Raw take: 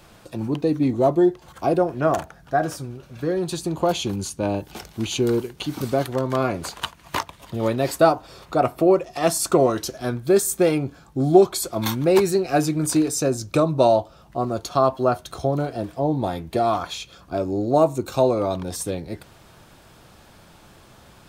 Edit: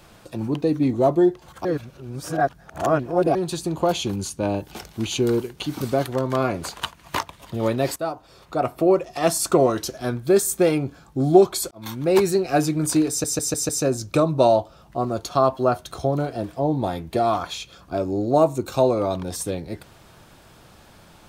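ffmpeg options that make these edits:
ffmpeg -i in.wav -filter_complex "[0:a]asplit=9[link_01][link_02][link_03][link_04][link_05][link_06][link_07][link_08][link_09];[link_01]atrim=end=1.652[link_10];[link_02]atrim=start=1.648:end=3.352,asetpts=PTS-STARTPTS,areverse[link_11];[link_03]atrim=start=3.348:end=7.96,asetpts=PTS-STARTPTS,afade=type=out:start_time=4.608:duration=0.004:curve=hsin:silence=0.199526[link_12];[link_04]atrim=start=7.96:end=11.71,asetpts=PTS-STARTPTS,afade=type=in:duration=1.08:silence=0.199526,afade=type=out:start_time=3.746:duration=0.004:curve=hsin[link_13];[link_05]atrim=start=11.71:end=13.242,asetpts=PTS-STARTPTS,afade=type=in:duration=0.49[link_14];[link_06]atrim=start=13.088:end=13.242[link_15];[link_07]atrim=start=13.088:end=13.242[link_16];[link_08]atrim=start=13.088:end=13.242[link_17];[link_09]atrim=start=13.088[link_18];[link_10][link_11]acrossfade=duration=0.004:curve1=hsin:curve2=hsin[link_19];[link_12][link_13][link_14]concat=n=3:v=0:a=1[link_20];[link_19][link_20]acrossfade=duration=0.004:curve1=hsin:curve2=hsin[link_21];[link_21][link_15]acrossfade=duration=0.004:curve1=hsin:curve2=hsin[link_22];[link_22][link_16]acrossfade=duration=0.004:curve1=hsin:curve2=hsin[link_23];[link_23][link_17]acrossfade=duration=0.004:curve1=hsin:curve2=hsin[link_24];[link_24][link_18]acrossfade=duration=0.004:curve1=hsin:curve2=hsin" out.wav

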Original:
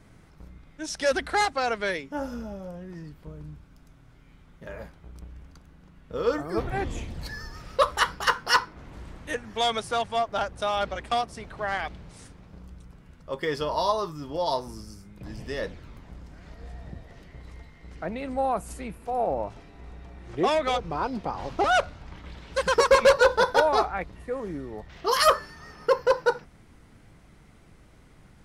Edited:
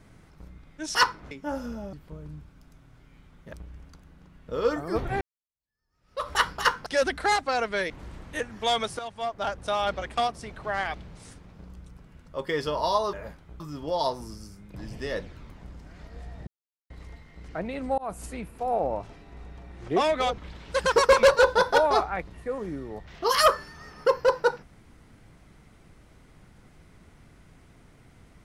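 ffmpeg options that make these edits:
ffmpeg -i in.wav -filter_complex "[0:a]asplit=15[link_01][link_02][link_03][link_04][link_05][link_06][link_07][link_08][link_09][link_10][link_11][link_12][link_13][link_14][link_15];[link_01]atrim=end=0.952[link_16];[link_02]atrim=start=8.478:end=8.842[link_17];[link_03]atrim=start=1.988:end=2.612[link_18];[link_04]atrim=start=3.078:end=4.682[link_19];[link_05]atrim=start=5.148:end=6.83,asetpts=PTS-STARTPTS,afade=type=out:start_time=1.678:duration=0.004:curve=hsin[link_20];[link_06]atrim=start=6.83:end=8.482,asetpts=PTS-STARTPTS,afade=type=in:duration=1.11:curve=exp[link_21];[link_07]atrim=start=0.948:end=1.992[link_22];[link_08]atrim=start=8.838:end=9.93,asetpts=PTS-STARTPTS,afade=type=out:start_time=1.088:duration=0.004:curve=hsin:silence=0.237137[link_23];[link_09]atrim=start=9.93:end=14.072,asetpts=PTS-STARTPTS,afade=type=in:duration=0.63:silence=0.237137[link_24];[link_10]atrim=start=4.678:end=5.152[link_25];[link_11]atrim=start=14.068:end=16.94,asetpts=PTS-STARTPTS,afade=type=out:start_time=2.868:duration=0.004:curve=hsin[link_26];[link_12]atrim=start=16.94:end=17.37,asetpts=PTS-STARTPTS,volume=0[link_27];[link_13]atrim=start=17.37:end=18.45,asetpts=PTS-STARTPTS,afade=type=in:duration=0.004:curve=hsin,afade=type=out:start_time=1.076:duration=0.004:curve=hsin[link_28];[link_14]atrim=start=18.45:end=20.852,asetpts=PTS-STARTPTS,afade=type=in:duration=0.28:curve=qsin[link_29];[link_15]atrim=start=22.198[link_30];[link_16][link_17]acrossfade=duration=0.004:curve1=hsin:curve2=hsin[link_31];[link_31][link_18]acrossfade=duration=0.004:curve1=hsin:curve2=hsin[link_32];[link_32][link_19]acrossfade=duration=0.004:curve1=hsin:curve2=hsin[link_33];[link_20][link_21]concat=n=2:v=0:a=1[link_34];[link_33][link_34]acrossfade=duration=0.004:curve1=hsin:curve2=hsin[link_35];[link_35][link_22]acrossfade=duration=0.004:curve1=hsin:curve2=hsin[link_36];[link_23][link_24]concat=n=2:v=0:a=1[link_37];[link_36][link_37]acrossfade=duration=0.004:curve1=hsin:curve2=hsin[link_38];[link_38][link_25]acrossfade=duration=0.004:curve1=hsin:curve2=hsin[link_39];[link_26][link_27][link_28][link_29]concat=n=4:v=0:a=1[link_40];[link_39][link_40]acrossfade=duration=0.004:curve1=hsin:curve2=hsin[link_41];[link_41][link_30]acrossfade=duration=0.004:curve1=hsin:curve2=hsin" out.wav

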